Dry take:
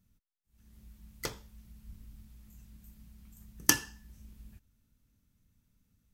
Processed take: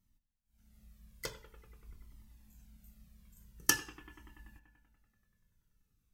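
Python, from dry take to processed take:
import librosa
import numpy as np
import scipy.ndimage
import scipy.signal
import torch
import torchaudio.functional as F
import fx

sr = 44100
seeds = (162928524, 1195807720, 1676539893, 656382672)

y = fx.peak_eq(x, sr, hz=77.0, db=-5.5, octaves=1.6)
y = fx.echo_bbd(y, sr, ms=96, stages=2048, feedback_pct=76, wet_db=-15.5)
y = fx.comb_cascade(y, sr, direction='falling', hz=0.47)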